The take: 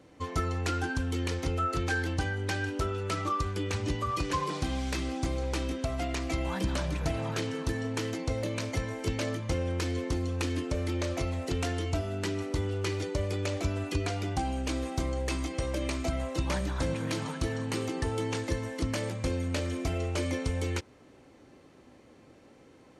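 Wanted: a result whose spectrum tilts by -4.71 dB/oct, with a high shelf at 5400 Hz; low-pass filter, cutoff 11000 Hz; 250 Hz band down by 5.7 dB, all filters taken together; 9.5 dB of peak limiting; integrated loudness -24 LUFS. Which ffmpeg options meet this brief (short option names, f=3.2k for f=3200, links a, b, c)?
-af "lowpass=11k,equalizer=f=250:t=o:g=-7.5,highshelf=f=5.4k:g=5.5,volume=12dB,alimiter=limit=-15dB:level=0:latency=1"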